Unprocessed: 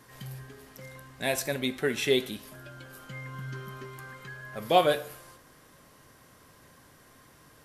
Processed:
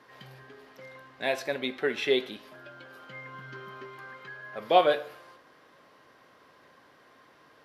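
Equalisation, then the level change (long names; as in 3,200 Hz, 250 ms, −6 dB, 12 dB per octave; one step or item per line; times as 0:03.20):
high-pass filter 160 Hz 6 dB per octave
high-frequency loss of the air 340 metres
bass and treble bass −11 dB, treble +10 dB
+3.0 dB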